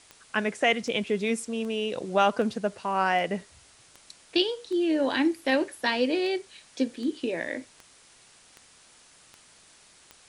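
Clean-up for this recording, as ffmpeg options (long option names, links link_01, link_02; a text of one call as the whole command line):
ffmpeg -i in.wav -af "adeclick=threshold=4,afwtdn=0.0022" out.wav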